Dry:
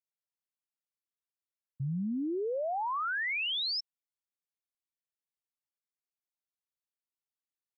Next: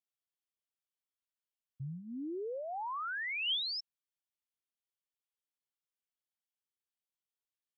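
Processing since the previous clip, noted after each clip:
thirty-one-band graphic EQ 200 Hz −12 dB, 630 Hz −3 dB, 3,150 Hz +7 dB
level −5.5 dB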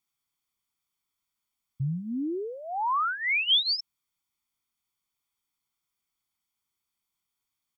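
comb filter 0.9 ms, depth 69%
level +8.5 dB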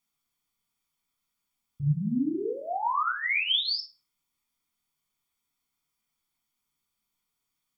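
downward compressor 1.5 to 1, threshold −35 dBFS, peak gain reduction 6 dB
rectangular room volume 360 cubic metres, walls furnished, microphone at 1.8 metres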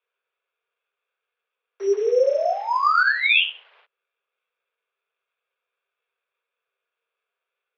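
in parallel at −6 dB: bit reduction 7 bits
on the sum: bad sample-rate conversion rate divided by 8×, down filtered, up zero stuff
single-sideband voice off tune +250 Hz 160–2,900 Hz
level +5.5 dB

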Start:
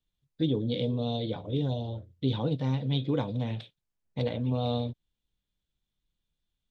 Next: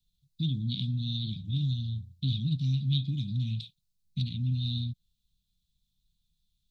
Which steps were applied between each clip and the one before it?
thirty-one-band graphic EQ 630 Hz −5 dB, 2,500 Hz +11 dB, 4,000 Hz +4 dB
in parallel at +1.5 dB: downward compressor, threshold −36 dBFS, peak gain reduction 13.5 dB
on the sum: elliptic band-stop filter 190–3,900 Hz, stop band 50 dB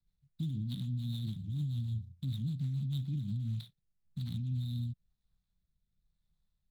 running median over 15 samples
brickwall limiter −28.5 dBFS, peak gain reduction 8 dB
rotating-speaker cabinet horn 6.7 Hz, later 1 Hz, at 0:02.91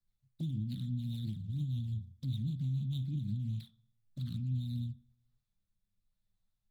flanger swept by the level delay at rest 10.1 ms, full sweep at −32 dBFS
on a send at −11 dB: convolution reverb RT60 0.60 s, pre-delay 3 ms

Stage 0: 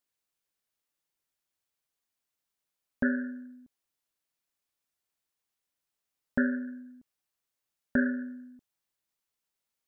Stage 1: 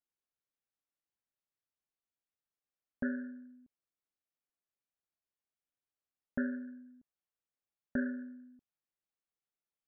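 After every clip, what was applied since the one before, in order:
low-pass filter 1,500 Hz 6 dB per octave
notch filter 950 Hz, Q 11
level −7 dB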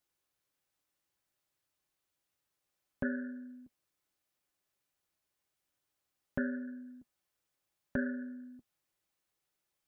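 downward compressor 1.5 to 1, threshold −53 dBFS, peak gain reduction 8.5 dB
notch comb filter 230 Hz
level +11 dB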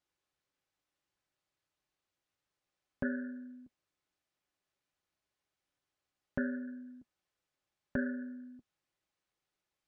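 high-frequency loss of the air 69 metres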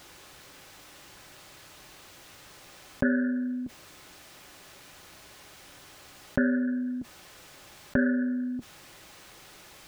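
envelope flattener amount 50%
level +8.5 dB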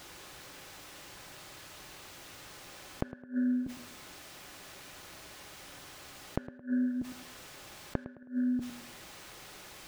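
gate with flip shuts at −21 dBFS, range −27 dB
on a send: tape delay 107 ms, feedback 42%, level −10 dB, low-pass 2,100 Hz
on the sum: level +1 dB

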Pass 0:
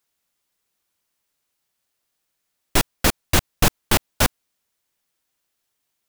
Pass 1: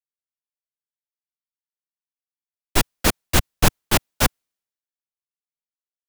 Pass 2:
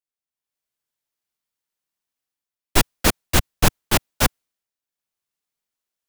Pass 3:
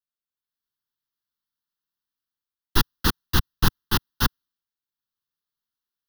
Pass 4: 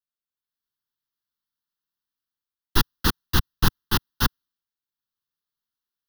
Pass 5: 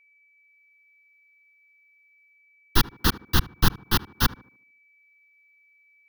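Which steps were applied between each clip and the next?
multiband upward and downward expander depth 100%; level −1 dB
automatic gain control gain up to 11 dB; level −1 dB
phaser with its sweep stopped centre 2,300 Hz, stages 6; level −1.5 dB
no processing that can be heard
steady tone 2,300 Hz −58 dBFS; tape delay 75 ms, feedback 47%, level −15 dB, low-pass 1,000 Hz

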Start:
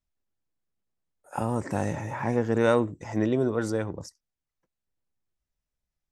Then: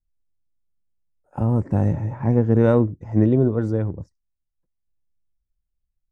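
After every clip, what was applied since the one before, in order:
spectral tilt −4.5 dB per octave
expander for the loud parts 1.5 to 1, over −38 dBFS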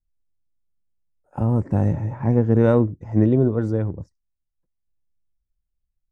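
no processing that can be heard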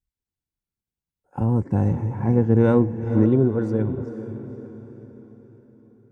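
notch comb filter 620 Hz
on a send: feedback delay with all-pass diffusion 492 ms, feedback 46%, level −11 dB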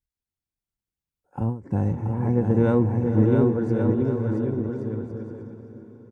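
bouncing-ball delay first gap 680 ms, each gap 0.65×, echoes 5
every ending faded ahead of time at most 160 dB per second
level −3 dB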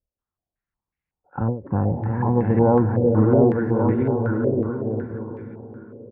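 in parallel at −10.5 dB: soft clipping −22.5 dBFS, distortion −8 dB
on the sum: low-pass on a step sequencer 5.4 Hz 570–2,100 Hz

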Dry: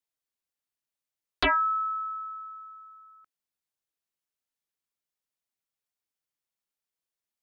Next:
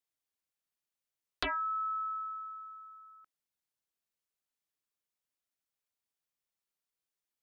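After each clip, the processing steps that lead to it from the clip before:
downward compressor 12 to 1, threshold −30 dBFS, peak gain reduction 9.5 dB
level −2 dB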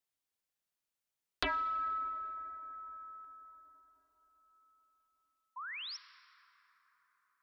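sound drawn into the spectrogram rise, 0:05.56–0:05.97, 950–5,800 Hz −43 dBFS
convolution reverb RT60 5.2 s, pre-delay 28 ms, DRR 13 dB

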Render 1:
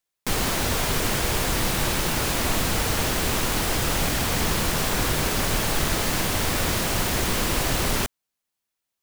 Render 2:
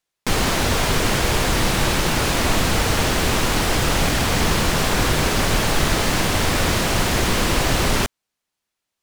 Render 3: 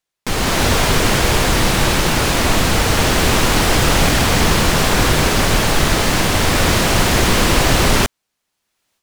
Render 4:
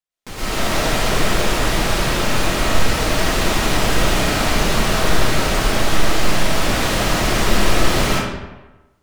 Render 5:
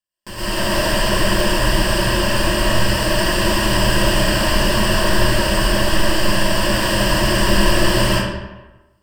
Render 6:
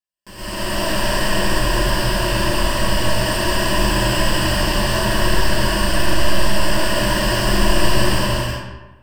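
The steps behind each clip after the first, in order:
high-shelf EQ 11,000 Hz −12 dB; level +5.5 dB
automatic gain control gain up to 15.5 dB; level −1 dB
comb and all-pass reverb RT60 1.1 s, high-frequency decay 0.7×, pre-delay 80 ms, DRR −9.5 dB; level −13 dB
EQ curve with evenly spaced ripples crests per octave 1.3, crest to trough 13 dB; level −1 dB
reverb whose tail is shaped and stops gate 420 ms flat, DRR −4 dB; level −7 dB

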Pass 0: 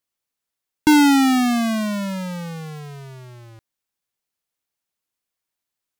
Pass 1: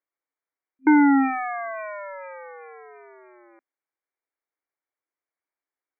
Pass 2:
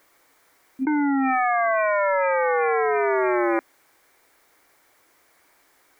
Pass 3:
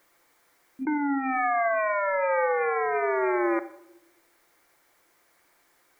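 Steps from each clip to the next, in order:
brick-wall band-pass 260–2,400 Hz; level −2.5 dB
envelope flattener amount 100%; level −7.5 dB
convolution reverb RT60 0.85 s, pre-delay 6 ms, DRR 10.5 dB; level −4.5 dB

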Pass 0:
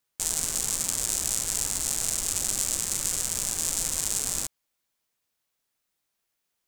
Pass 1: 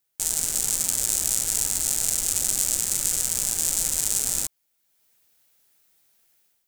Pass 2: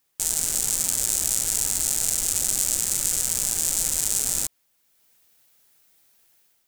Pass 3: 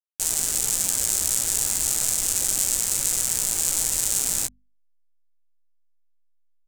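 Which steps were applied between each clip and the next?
high-shelf EQ 9,300 Hz +8.5 dB; notch filter 1,100 Hz, Q 6.9; automatic gain control gain up to 11.5 dB; level −1 dB
in parallel at +0.5 dB: brickwall limiter −9.5 dBFS, peak gain reduction 8 dB; on the sum: bit reduction 11 bits; level −3.5 dB
hold until the input has moved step −34 dBFS; mains-hum notches 50/100/150/200/250 Hz; double-tracking delay 16 ms −9 dB

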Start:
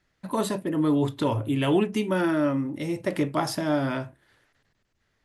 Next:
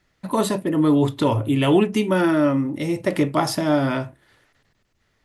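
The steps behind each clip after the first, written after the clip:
notch filter 1,600 Hz, Q 19
level +5.5 dB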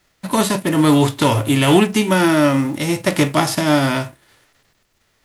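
spectral envelope flattened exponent 0.6
level +4 dB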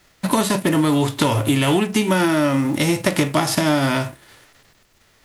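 downward compressor, threshold −21 dBFS, peak gain reduction 12.5 dB
level +6 dB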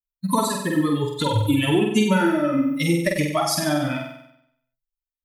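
spectral dynamics exaggerated over time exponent 3
on a send: flutter between parallel walls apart 8.1 metres, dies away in 0.76 s
on the sum: level +2 dB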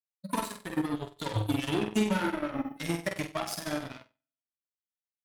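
harmonic generator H 7 −17 dB, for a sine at −7.5 dBFS
flanger 1.5 Hz, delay 9.2 ms, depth 1.1 ms, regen +77%
level −5.5 dB

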